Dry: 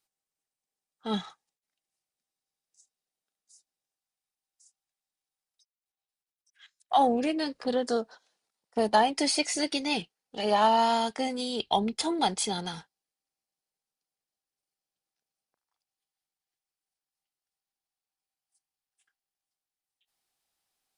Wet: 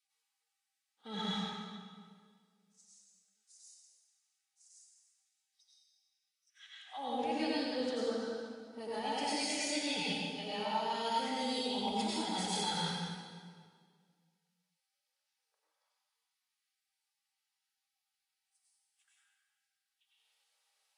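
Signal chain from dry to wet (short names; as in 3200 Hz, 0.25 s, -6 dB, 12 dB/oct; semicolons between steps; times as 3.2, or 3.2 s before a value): bell 2600 Hz +6 dB 2.3 oct; reverse; compressor 20:1, threshold -33 dBFS, peak gain reduction 19 dB; reverse; notch comb 350 Hz; reverb RT60 1.9 s, pre-delay 85 ms, DRR -7.5 dB; gain -5.5 dB; Vorbis 32 kbps 32000 Hz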